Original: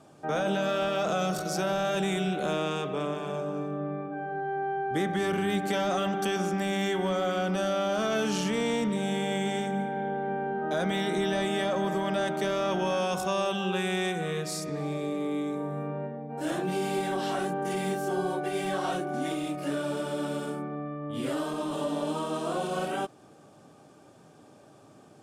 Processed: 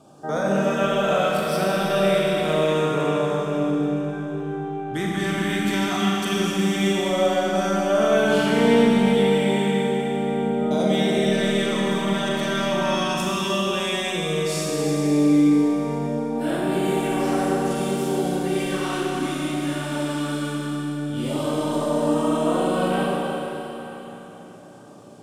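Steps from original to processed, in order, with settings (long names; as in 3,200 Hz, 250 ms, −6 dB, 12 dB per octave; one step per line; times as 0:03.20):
auto-filter notch sine 0.14 Hz 470–7,000 Hz
four-comb reverb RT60 3.8 s, combs from 30 ms, DRR −4 dB
level +3 dB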